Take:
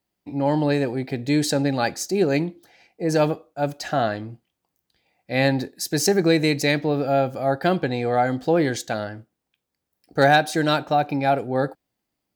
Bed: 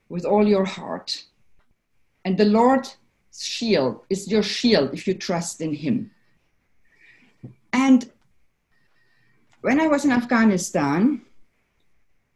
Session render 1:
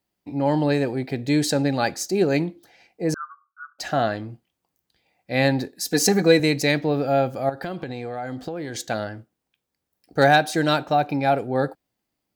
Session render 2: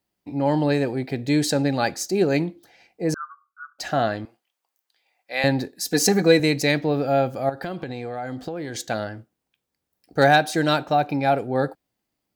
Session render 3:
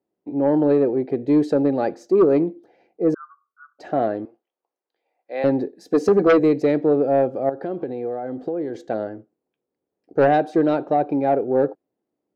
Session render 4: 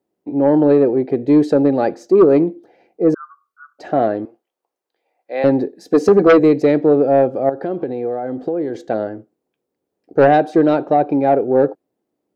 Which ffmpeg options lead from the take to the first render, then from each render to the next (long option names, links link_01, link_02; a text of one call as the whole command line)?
ffmpeg -i in.wav -filter_complex "[0:a]asettb=1/sr,asplit=3[link_01][link_02][link_03];[link_01]atrim=end=3.144[link_04];[link_02]atrim=start=3.14:end=3.79,asetpts=PTS-STARTPTS,afade=type=in:duration=0.004:curve=qsin,afade=type=out:start_time=0.646:duration=0.004:curve=qsin,asuperpass=centerf=1300:order=12:qfactor=2.9[link_05];[link_03]atrim=start=3.786[link_06];[link_04][link_05]acrossfade=duration=0.004:curve1=hsin:curve2=qsin[link_07];[link_07][link_06]acrossfade=duration=0.004:curve1=qsin:curve2=hsin,asettb=1/sr,asplit=3[link_08][link_09][link_10];[link_08]atrim=end=5.854[link_11];[link_09]atrim=start=5.85:end=6.4,asetpts=PTS-STARTPTS,afade=type=in:duration=0.004:curve=qsin,afade=type=out:start_time=0.546:duration=0.004:curve=qsin,aecho=1:1:4.1:0.85,atrim=end_sample=24255[link_12];[link_10]atrim=start=6.396[link_13];[link_11][link_12]acrossfade=duration=0.004:curve1=hsin:curve2=qsin[link_14];[link_14][link_13]acrossfade=duration=0.004:curve1=qsin:curve2=hsin,asettb=1/sr,asplit=3[link_15][link_16][link_17];[link_15]atrim=end=7.494[link_18];[link_16]atrim=start=7.49:end=8.79,asetpts=PTS-STARTPTS,afade=type=in:duration=0.004:curve=qsin,afade=type=out:start_time=1.296:duration=0.004:curve=qsin,acompressor=threshold=-26dB:ratio=12:attack=3.2:release=140:knee=1:detection=peak[link_19];[link_17]atrim=start=8.786[link_20];[link_18][link_19]acrossfade=duration=0.004:curve1=hsin:curve2=qsin[link_21];[link_21][link_20]acrossfade=duration=0.004:curve1=qsin:curve2=hsin" out.wav
ffmpeg -i in.wav -filter_complex "[0:a]asettb=1/sr,asplit=3[link_01][link_02][link_03];[link_01]atrim=end=4.254[link_04];[link_02]atrim=start=4.25:end=5.44,asetpts=PTS-STARTPTS,afade=type=in:duration=0.004:curve=qsin,afade=type=out:start_time=1.186:duration=0.004:curve=qsin,highpass=710[link_05];[link_03]atrim=start=5.436[link_06];[link_04][link_05]acrossfade=duration=0.004:curve1=hsin:curve2=qsin[link_07];[link_07][link_06]acrossfade=duration=0.004:curve1=qsin:curve2=hsin" out.wav
ffmpeg -i in.wav -af "bandpass=frequency=400:width_type=q:width=1.9:csg=0,aeval=exprs='0.398*(cos(1*acos(clip(val(0)/0.398,-1,1)))-cos(1*PI/2))+0.2*(cos(5*acos(clip(val(0)/0.398,-1,1)))-cos(5*PI/2))+0.0501*(cos(7*acos(clip(val(0)/0.398,-1,1)))-cos(7*PI/2))':channel_layout=same" out.wav
ffmpeg -i in.wav -af "volume=5dB" out.wav